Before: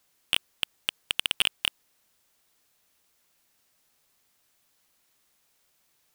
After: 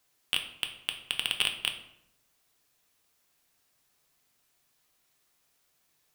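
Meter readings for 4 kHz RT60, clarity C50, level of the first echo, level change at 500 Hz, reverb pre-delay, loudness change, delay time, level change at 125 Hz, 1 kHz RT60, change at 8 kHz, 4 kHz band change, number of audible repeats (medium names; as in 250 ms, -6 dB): 0.50 s, 9.5 dB, no echo, -2.0 dB, 3 ms, -2.5 dB, no echo, -0.5 dB, 0.75 s, -2.5 dB, -2.5 dB, no echo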